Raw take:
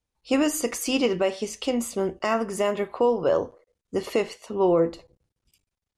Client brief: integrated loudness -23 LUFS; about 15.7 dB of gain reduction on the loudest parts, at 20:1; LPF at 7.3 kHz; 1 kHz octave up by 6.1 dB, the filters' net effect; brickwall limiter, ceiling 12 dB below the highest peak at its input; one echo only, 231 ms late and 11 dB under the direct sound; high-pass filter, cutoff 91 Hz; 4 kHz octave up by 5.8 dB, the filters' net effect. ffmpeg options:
-af "highpass=91,lowpass=7300,equalizer=f=1000:t=o:g=7,equalizer=f=4000:t=o:g=9,acompressor=threshold=0.0316:ratio=20,alimiter=level_in=1.58:limit=0.0631:level=0:latency=1,volume=0.631,aecho=1:1:231:0.282,volume=5.62"

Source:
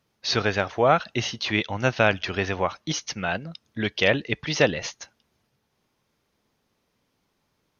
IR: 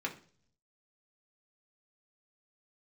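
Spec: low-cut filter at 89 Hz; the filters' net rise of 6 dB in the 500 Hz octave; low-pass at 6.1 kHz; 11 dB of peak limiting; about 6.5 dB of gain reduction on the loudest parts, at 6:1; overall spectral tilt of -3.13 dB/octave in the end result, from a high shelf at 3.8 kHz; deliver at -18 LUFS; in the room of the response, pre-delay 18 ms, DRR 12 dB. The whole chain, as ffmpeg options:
-filter_complex "[0:a]highpass=89,lowpass=6100,equalizer=f=500:t=o:g=7,highshelf=f=3800:g=9,acompressor=threshold=0.158:ratio=6,alimiter=limit=0.2:level=0:latency=1,asplit=2[s0][s1];[1:a]atrim=start_sample=2205,adelay=18[s2];[s1][s2]afir=irnorm=-1:irlink=0,volume=0.168[s3];[s0][s3]amix=inputs=2:normalize=0,volume=2.66"

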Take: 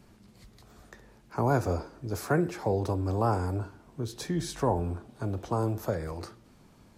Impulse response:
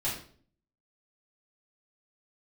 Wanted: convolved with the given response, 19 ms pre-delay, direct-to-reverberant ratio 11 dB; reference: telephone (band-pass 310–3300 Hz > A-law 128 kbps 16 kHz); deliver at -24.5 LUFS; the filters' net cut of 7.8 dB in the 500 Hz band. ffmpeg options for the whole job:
-filter_complex "[0:a]equalizer=f=500:t=o:g=-9,asplit=2[s0][s1];[1:a]atrim=start_sample=2205,adelay=19[s2];[s1][s2]afir=irnorm=-1:irlink=0,volume=0.141[s3];[s0][s3]amix=inputs=2:normalize=0,highpass=310,lowpass=3300,volume=4.47" -ar 16000 -c:a pcm_alaw

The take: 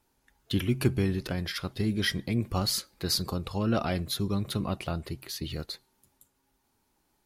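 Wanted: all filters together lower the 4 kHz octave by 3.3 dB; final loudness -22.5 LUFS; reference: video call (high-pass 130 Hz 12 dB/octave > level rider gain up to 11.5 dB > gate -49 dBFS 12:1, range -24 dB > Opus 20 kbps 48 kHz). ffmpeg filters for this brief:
-af "highpass=130,equalizer=f=4000:t=o:g=-4,dynaudnorm=m=3.76,agate=range=0.0631:threshold=0.00355:ratio=12,volume=3.16" -ar 48000 -c:a libopus -b:a 20k

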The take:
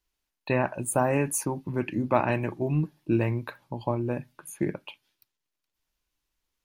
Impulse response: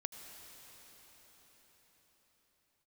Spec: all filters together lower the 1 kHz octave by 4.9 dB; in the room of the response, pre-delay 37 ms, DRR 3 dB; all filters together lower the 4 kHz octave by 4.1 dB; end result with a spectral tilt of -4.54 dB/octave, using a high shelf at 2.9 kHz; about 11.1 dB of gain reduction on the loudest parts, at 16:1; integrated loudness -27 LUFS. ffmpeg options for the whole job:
-filter_complex "[0:a]equalizer=f=1000:t=o:g=-6.5,highshelf=f=2900:g=4,equalizer=f=4000:t=o:g=-9,acompressor=threshold=0.0282:ratio=16,asplit=2[s0][s1];[1:a]atrim=start_sample=2205,adelay=37[s2];[s1][s2]afir=irnorm=-1:irlink=0,volume=0.841[s3];[s0][s3]amix=inputs=2:normalize=0,volume=2.82"

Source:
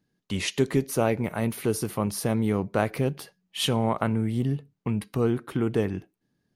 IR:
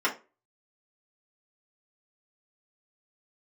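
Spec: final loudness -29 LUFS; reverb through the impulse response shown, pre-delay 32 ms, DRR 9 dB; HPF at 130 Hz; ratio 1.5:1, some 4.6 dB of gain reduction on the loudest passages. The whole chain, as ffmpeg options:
-filter_complex "[0:a]highpass=130,acompressor=threshold=0.0282:ratio=1.5,asplit=2[s0][s1];[1:a]atrim=start_sample=2205,adelay=32[s2];[s1][s2]afir=irnorm=-1:irlink=0,volume=0.0891[s3];[s0][s3]amix=inputs=2:normalize=0,volume=1.26"

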